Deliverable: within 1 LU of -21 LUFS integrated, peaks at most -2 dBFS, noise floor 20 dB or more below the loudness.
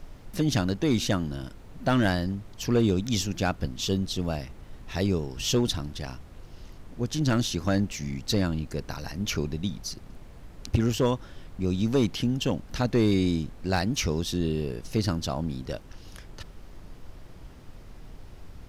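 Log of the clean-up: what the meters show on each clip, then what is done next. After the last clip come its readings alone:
clipped samples 0.5%; clipping level -15.5 dBFS; noise floor -47 dBFS; noise floor target -48 dBFS; loudness -28.0 LUFS; peak level -15.5 dBFS; loudness target -21.0 LUFS
-> clip repair -15.5 dBFS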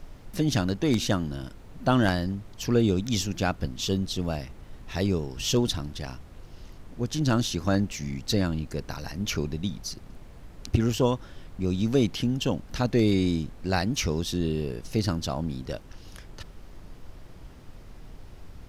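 clipped samples 0.0%; noise floor -47 dBFS; noise floor target -48 dBFS
-> noise print and reduce 6 dB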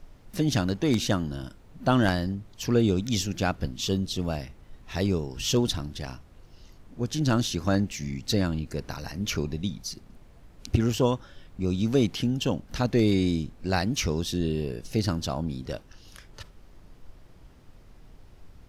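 noise floor -53 dBFS; loudness -27.5 LUFS; peak level -7.5 dBFS; loudness target -21.0 LUFS
-> trim +6.5 dB; peak limiter -2 dBFS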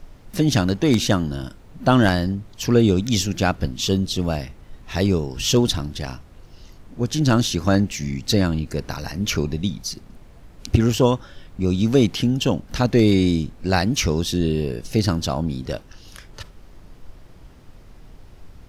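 loudness -21.0 LUFS; peak level -2.0 dBFS; noise floor -46 dBFS

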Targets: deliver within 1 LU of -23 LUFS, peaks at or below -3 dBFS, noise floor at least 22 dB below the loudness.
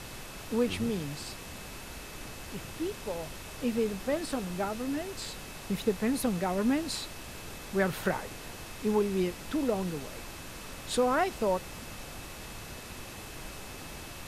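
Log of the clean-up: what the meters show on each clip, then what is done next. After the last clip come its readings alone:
steady tone 2.6 kHz; tone level -54 dBFS; noise floor -44 dBFS; noise floor target -56 dBFS; loudness -33.5 LUFS; peak level -15.0 dBFS; loudness target -23.0 LUFS
-> band-stop 2.6 kHz, Q 30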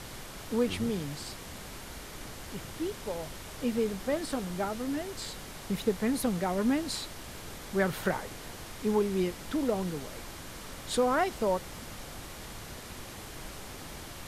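steady tone not found; noise floor -44 dBFS; noise floor target -56 dBFS
-> noise print and reduce 12 dB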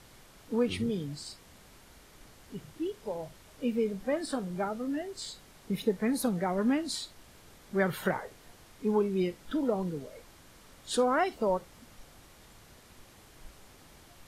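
noise floor -56 dBFS; loudness -32.0 LUFS; peak level -15.0 dBFS; loudness target -23.0 LUFS
-> trim +9 dB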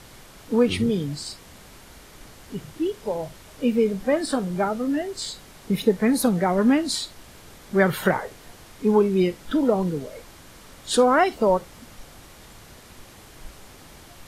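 loudness -23.0 LUFS; peak level -6.0 dBFS; noise floor -47 dBFS

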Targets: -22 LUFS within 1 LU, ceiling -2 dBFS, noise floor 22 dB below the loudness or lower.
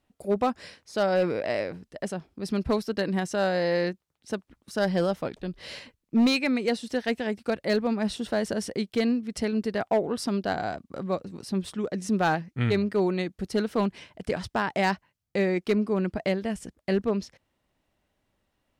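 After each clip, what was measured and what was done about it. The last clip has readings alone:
clipped samples 0.6%; clipping level -16.5 dBFS; loudness -28.0 LUFS; peak level -16.5 dBFS; loudness target -22.0 LUFS
-> clip repair -16.5 dBFS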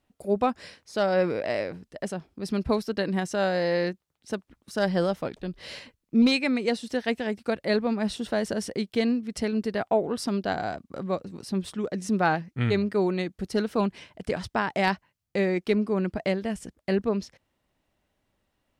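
clipped samples 0.0%; loudness -27.5 LUFS; peak level -8.5 dBFS; loudness target -22.0 LUFS
-> trim +5.5 dB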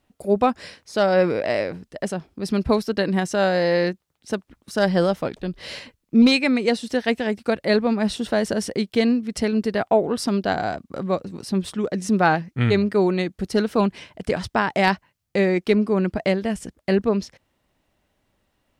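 loudness -22.0 LUFS; peak level -3.0 dBFS; noise floor -74 dBFS

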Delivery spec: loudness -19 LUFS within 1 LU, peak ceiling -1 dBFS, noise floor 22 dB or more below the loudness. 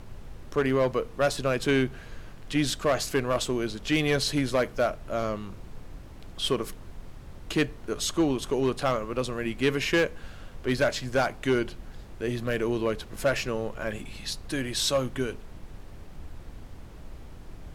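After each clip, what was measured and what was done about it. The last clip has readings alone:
clipped samples 0.6%; clipping level -17.0 dBFS; noise floor -45 dBFS; noise floor target -50 dBFS; loudness -28.0 LUFS; peak level -17.0 dBFS; loudness target -19.0 LUFS
-> clip repair -17 dBFS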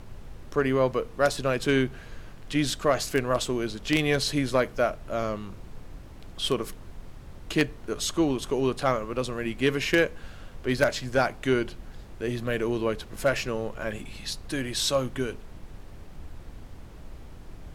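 clipped samples 0.0%; noise floor -45 dBFS; noise floor target -50 dBFS
-> noise print and reduce 6 dB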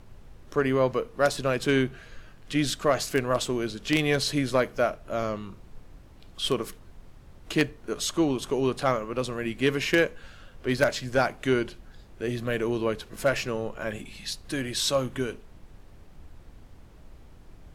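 noise floor -50 dBFS; loudness -27.5 LUFS; peak level -8.0 dBFS; loudness target -19.0 LUFS
-> trim +8.5 dB; peak limiter -1 dBFS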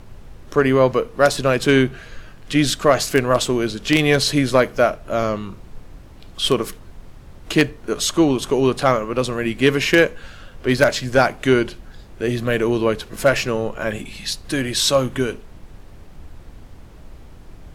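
loudness -19.0 LUFS; peak level -1.0 dBFS; noise floor -42 dBFS

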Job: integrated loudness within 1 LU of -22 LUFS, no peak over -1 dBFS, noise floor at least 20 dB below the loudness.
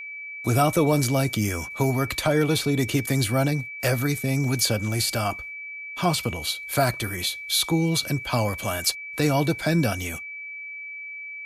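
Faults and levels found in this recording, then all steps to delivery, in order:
steady tone 2.3 kHz; tone level -34 dBFS; loudness -24.5 LUFS; peak level -8.5 dBFS; loudness target -22.0 LUFS
-> band-stop 2.3 kHz, Q 30; trim +2.5 dB

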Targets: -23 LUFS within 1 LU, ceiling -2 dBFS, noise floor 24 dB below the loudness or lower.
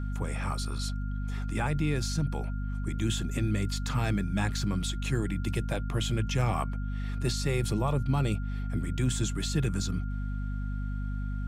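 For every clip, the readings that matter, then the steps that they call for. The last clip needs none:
hum 50 Hz; highest harmonic 250 Hz; hum level -30 dBFS; steady tone 1.4 kHz; tone level -48 dBFS; loudness -31.0 LUFS; peak level -16.0 dBFS; loudness target -23.0 LUFS
-> hum notches 50/100/150/200/250 Hz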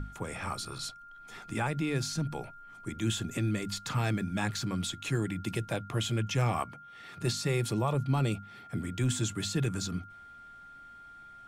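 hum not found; steady tone 1.4 kHz; tone level -48 dBFS
-> band-stop 1.4 kHz, Q 30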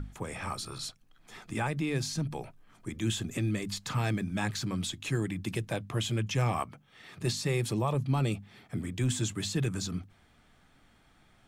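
steady tone not found; loudness -32.5 LUFS; peak level -18.0 dBFS; loudness target -23.0 LUFS
-> trim +9.5 dB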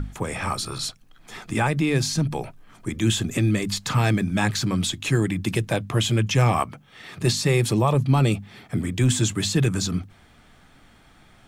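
loudness -23.0 LUFS; peak level -8.5 dBFS; noise floor -54 dBFS

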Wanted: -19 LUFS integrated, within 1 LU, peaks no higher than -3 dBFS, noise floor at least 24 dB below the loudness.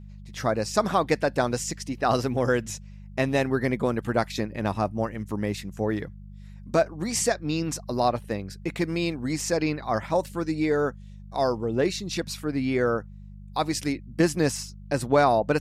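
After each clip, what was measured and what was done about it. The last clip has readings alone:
hum 50 Hz; highest harmonic 200 Hz; hum level -40 dBFS; loudness -26.5 LUFS; peak level -7.5 dBFS; loudness target -19.0 LUFS
-> de-hum 50 Hz, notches 4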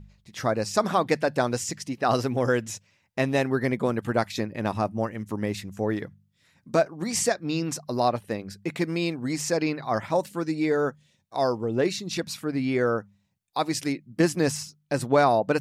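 hum not found; loudness -26.5 LUFS; peak level -7.5 dBFS; loudness target -19.0 LUFS
-> trim +7.5 dB; peak limiter -3 dBFS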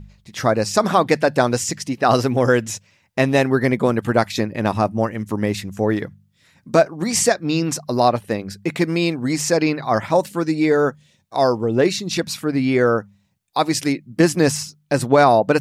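loudness -19.5 LUFS; peak level -3.0 dBFS; noise floor -62 dBFS

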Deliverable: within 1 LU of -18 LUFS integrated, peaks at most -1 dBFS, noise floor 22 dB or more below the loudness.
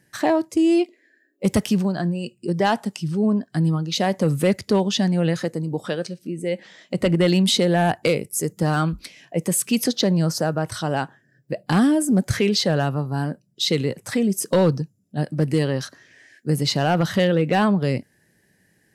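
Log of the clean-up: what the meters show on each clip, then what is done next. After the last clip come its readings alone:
clipped samples 0.6%; clipping level -10.0 dBFS; loudness -22.0 LUFS; peak level -10.0 dBFS; loudness target -18.0 LUFS
-> clip repair -10 dBFS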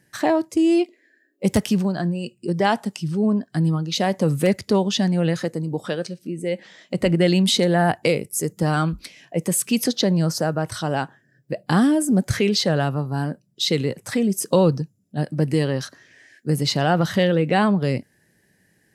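clipped samples 0.0%; loudness -21.5 LUFS; peak level -3.5 dBFS; loudness target -18.0 LUFS
-> trim +3.5 dB; peak limiter -1 dBFS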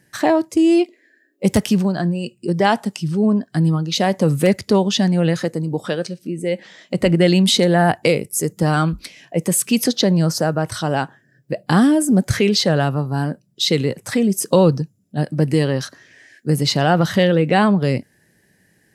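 loudness -18.0 LUFS; peak level -1.0 dBFS; noise floor -60 dBFS

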